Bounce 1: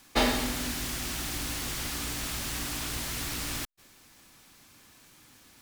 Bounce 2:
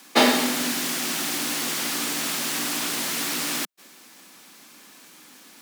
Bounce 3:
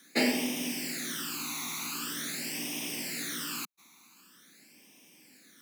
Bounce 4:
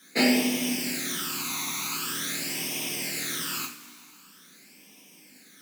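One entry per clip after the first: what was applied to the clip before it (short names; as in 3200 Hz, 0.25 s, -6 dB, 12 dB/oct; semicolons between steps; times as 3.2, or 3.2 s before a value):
steep high-pass 180 Hz 36 dB/oct; gain +8 dB
phaser stages 12, 0.45 Hz, lowest notch 520–1400 Hz; gain -6.5 dB
two-slope reverb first 0.32 s, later 2.1 s, from -18 dB, DRR -3.5 dB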